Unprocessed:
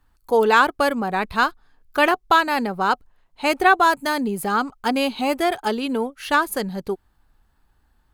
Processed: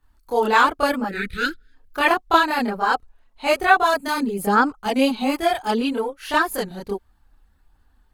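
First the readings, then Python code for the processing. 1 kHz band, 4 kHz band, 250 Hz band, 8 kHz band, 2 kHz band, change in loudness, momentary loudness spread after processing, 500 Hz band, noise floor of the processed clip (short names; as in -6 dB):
-0.5 dB, 0.0 dB, +1.0 dB, -0.5 dB, 0.0 dB, 0.0 dB, 10 LU, -0.5 dB, -60 dBFS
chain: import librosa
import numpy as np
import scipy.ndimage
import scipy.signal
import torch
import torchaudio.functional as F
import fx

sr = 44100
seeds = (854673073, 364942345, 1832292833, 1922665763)

y = fx.spec_box(x, sr, start_s=1.06, length_s=0.68, low_hz=540.0, high_hz=1300.0, gain_db=-29)
y = fx.chorus_voices(y, sr, voices=4, hz=0.8, base_ms=27, depth_ms=2.4, mix_pct=65)
y = fx.record_warp(y, sr, rpm=33.33, depth_cents=100.0)
y = y * 10.0 ** (2.5 / 20.0)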